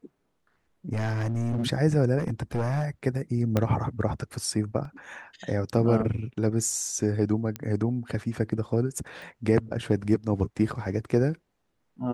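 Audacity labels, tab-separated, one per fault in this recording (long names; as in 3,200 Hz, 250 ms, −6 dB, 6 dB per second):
0.920000	1.660000	clipping −24 dBFS
2.190000	2.850000	clipping −22 dBFS
3.570000	3.570000	click −11 dBFS
4.850000	4.850000	drop-out 2.5 ms
7.560000	7.560000	click −17 dBFS
9.220000	9.220000	click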